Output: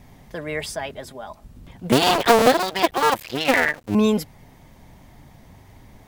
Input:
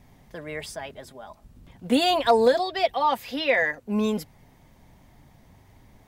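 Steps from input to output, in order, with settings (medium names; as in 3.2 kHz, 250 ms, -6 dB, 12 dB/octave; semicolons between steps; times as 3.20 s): 1.92–3.95 s: cycle switcher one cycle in 2, muted; trim +6.5 dB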